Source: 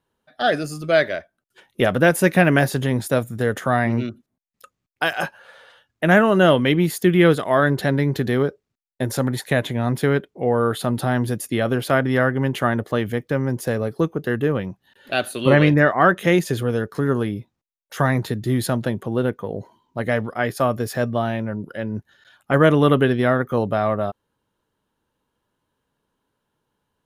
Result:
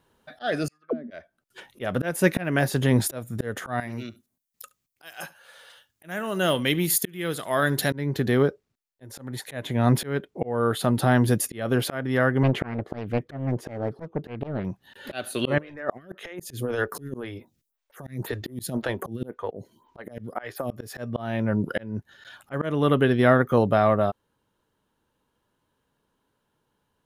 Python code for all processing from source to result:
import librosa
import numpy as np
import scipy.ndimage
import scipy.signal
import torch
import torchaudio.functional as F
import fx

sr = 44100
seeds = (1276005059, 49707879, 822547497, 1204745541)

y = fx.chain(x, sr, fx.high_shelf(hz=3700.0, db=-6.5),
    fx.auto_wah(base_hz=240.0, top_hz=2900.0, q=20.0, full_db=-15.5, direction='down'), at=(0.68, 1.11))
y = fx.chain(y, sr, fx.pre_emphasis(coefficient=0.8),
    fx.echo_single(ms=71, db=-21.5), at=(3.8, 7.93))
y = fx.chain(y, sr, fx.lowpass(hz=1400.0, slope=6),
    fx.doppler_dist(depth_ms=0.84), at=(12.43, 14.65))
y = fx.chain(y, sr, fx.high_shelf(hz=7900.0, db=6.5),
    fx.over_compress(threshold_db=-22.0, ratio=-0.5),
    fx.stagger_phaser(hz=1.9), at=(15.58, 20.71))
y = fx.auto_swell(y, sr, attack_ms=691.0)
y = fx.rider(y, sr, range_db=4, speed_s=0.5)
y = y * librosa.db_to_amplitude(5.0)